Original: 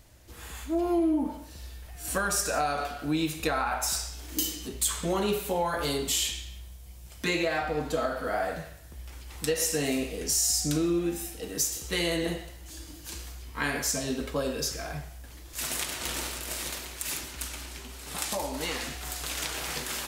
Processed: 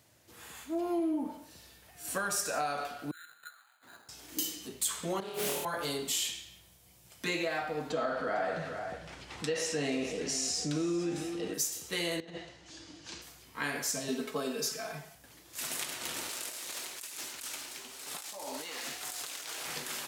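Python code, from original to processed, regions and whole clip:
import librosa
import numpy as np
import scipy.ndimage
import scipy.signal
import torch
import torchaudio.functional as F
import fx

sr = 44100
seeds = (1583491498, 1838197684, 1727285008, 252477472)

y = fx.chain(x, sr, fx.bandpass_q(hz=4100.0, q=20.0),
    fx.resample_bad(factor=8, down='none', up='hold'), at=(3.11, 4.09))
y = fx.chain(y, sr, fx.over_compress(threshold_db=-33.0, ratio=-0.5),
    fx.room_flutter(wall_m=4.5, rt60_s=1.3),
    fx.doppler_dist(depth_ms=0.45), at=(5.2, 5.65))
y = fx.chain(y, sr, fx.air_absorb(metres=100.0),
    fx.echo_single(ms=450, db=-13.5),
    fx.env_flatten(amount_pct=50), at=(7.9, 11.54))
y = fx.chain(y, sr, fx.lowpass(hz=6200.0, slope=24),
    fx.over_compress(threshold_db=-35.0, ratio=-0.5), at=(12.2, 13.22))
y = fx.chain(y, sr, fx.highpass(hz=110.0, slope=12),
    fx.comb(ms=4.6, depth=0.84), at=(14.08, 15.15))
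y = fx.chain(y, sr, fx.bass_treble(bass_db=-10, treble_db=5),
    fx.over_compress(threshold_db=-35.0, ratio=-1.0),
    fx.resample_linear(factor=2), at=(16.29, 19.65))
y = scipy.signal.sosfilt(scipy.signal.butter(4, 100.0, 'highpass', fs=sr, output='sos'), y)
y = fx.low_shelf(y, sr, hz=350.0, db=-3.0)
y = F.gain(torch.from_numpy(y), -4.5).numpy()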